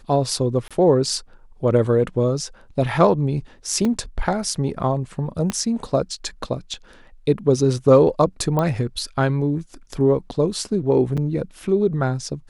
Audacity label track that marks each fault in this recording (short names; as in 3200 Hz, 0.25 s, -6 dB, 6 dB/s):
0.680000	0.710000	gap 26 ms
3.850000	3.850000	gap 2.1 ms
5.500000	5.500000	pop -10 dBFS
8.590000	8.590000	pop -10 dBFS
11.170000	11.180000	gap 6.2 ms